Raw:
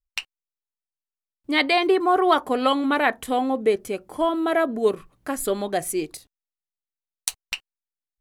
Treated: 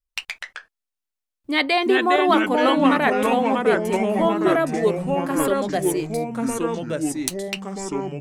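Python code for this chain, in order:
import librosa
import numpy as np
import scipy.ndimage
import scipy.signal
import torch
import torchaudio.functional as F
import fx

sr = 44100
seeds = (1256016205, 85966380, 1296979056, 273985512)

y = fx.echo_pitch(x, sr, ms=88, semitones=-3, count=3, db_per_echo=-3.0)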